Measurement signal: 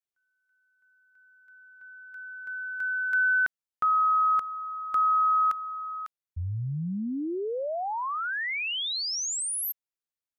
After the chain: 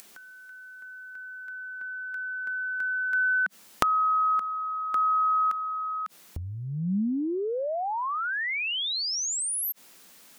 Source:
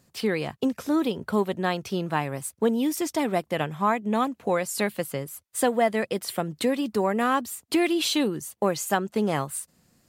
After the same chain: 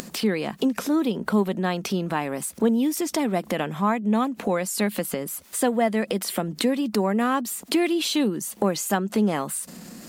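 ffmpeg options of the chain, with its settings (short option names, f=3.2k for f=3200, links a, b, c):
-af "lowshelf=f=150:t=q:w=3:g=-8.5,acompressor=mode=upward:threshold=-28dB:ratio=2.5:attack=30:release=29:knee=2.83:detection=peak,volume=-1dB"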